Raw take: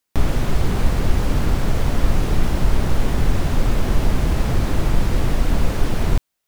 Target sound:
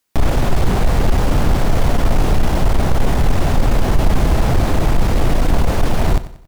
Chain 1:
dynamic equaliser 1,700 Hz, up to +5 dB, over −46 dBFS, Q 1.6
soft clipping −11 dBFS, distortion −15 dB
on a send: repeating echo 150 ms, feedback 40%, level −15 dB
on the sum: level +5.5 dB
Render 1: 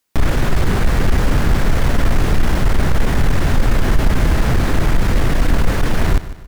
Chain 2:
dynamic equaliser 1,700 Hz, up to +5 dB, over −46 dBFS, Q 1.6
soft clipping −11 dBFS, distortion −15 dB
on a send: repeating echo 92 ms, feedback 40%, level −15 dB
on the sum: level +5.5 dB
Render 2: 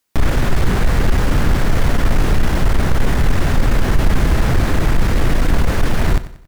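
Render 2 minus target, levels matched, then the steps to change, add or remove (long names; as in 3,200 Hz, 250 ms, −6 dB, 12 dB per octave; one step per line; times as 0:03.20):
2,000 Hz band +3.5 dB
change: dynamic equaliser 730 Hz, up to +5 dB, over −46 dBFS, Q 1.6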